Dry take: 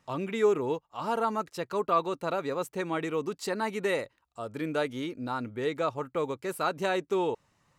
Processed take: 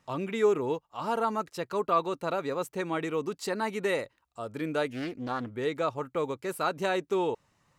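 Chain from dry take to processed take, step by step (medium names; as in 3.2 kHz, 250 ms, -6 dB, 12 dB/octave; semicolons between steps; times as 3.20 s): 4.90–5.53 s: loudspeaker Doppler distortion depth 0.43 ms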